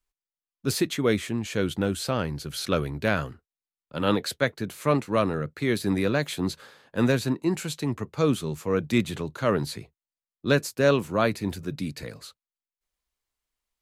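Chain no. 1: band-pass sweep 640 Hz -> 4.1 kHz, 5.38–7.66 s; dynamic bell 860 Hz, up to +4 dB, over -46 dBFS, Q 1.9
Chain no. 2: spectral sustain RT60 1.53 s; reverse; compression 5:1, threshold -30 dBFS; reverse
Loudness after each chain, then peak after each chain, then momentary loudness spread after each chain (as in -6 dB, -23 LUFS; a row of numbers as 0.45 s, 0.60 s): -35.5 LUFS, -33.0 LUFS; -15.0 dBFS, -18.0 dBFS; 17 LU, 5 LU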